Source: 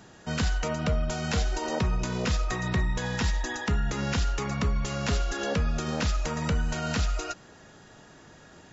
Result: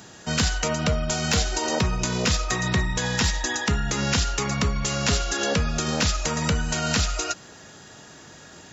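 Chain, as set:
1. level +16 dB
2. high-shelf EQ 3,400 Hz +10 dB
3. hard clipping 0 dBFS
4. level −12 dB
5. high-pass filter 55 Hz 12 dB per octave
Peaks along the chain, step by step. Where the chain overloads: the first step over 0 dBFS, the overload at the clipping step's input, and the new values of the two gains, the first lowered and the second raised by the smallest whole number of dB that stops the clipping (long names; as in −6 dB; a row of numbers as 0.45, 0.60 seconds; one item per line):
−2.0, +3.0, 0.0, −12.0, −9.5 dBFS
step 2, 3.0 dB
step 1 +13 dB, step 4 −9 dB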